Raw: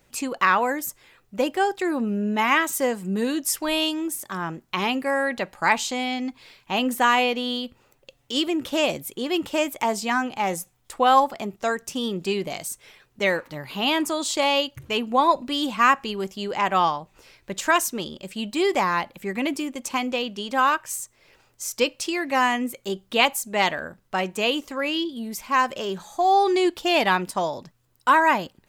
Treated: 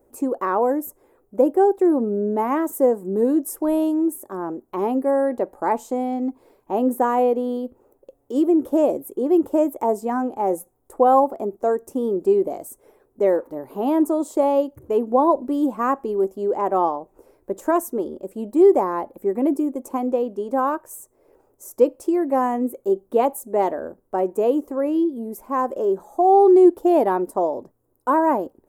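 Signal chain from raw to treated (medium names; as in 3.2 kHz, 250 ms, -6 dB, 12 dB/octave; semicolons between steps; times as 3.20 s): FFT filter 100 Hz 0 dB, 150 Hz -9 dB, 270 Hz +8 dB, 400 Hz +12 dB, 910 Hz +2 dB, 2.8 kHz -23 dB, 4.4 kHz -22 dB, 11 kHz -1 dB; trim -2 dB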